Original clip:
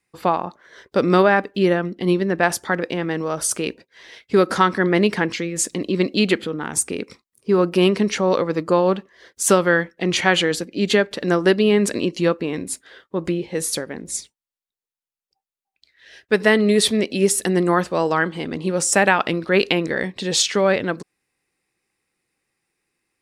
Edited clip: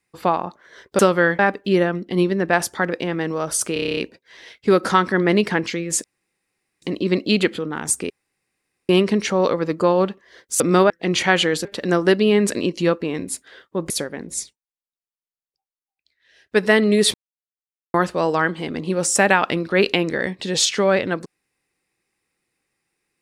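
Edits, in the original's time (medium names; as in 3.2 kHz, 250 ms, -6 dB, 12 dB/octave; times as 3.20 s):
0.99–1.29 s: swap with 9.48–9.88 s
3.63 s: stutter 0.03 s, 9 plays
5.70 s: insert room tone 0.78 s
6.98–7.77 s: room tone
10.63–11.04 s: delete
13.29–13.67 s: delete
14.17–16.34 s: dip -9.5 dB, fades 0.16 s
16.91–17.71 s: mute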